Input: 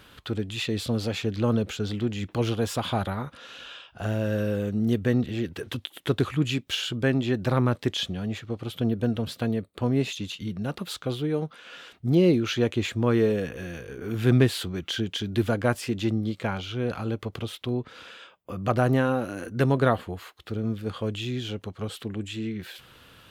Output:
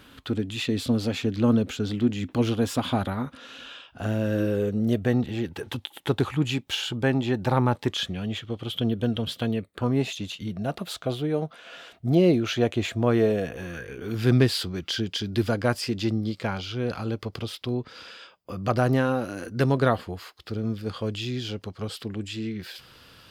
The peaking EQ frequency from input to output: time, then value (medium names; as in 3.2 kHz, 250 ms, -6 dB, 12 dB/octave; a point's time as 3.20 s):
peaking EQ +11.5 dB 0.29 oct
4.26 s 260 Hz
5.19 s 850 Hz
7.83 s 850 Hz
8.27 s 3.2 kHz
9.51 s 3.2 kHz
10.09 s 670 Hz
13.53 s 670 Hz
14.16 s 4.9 kHz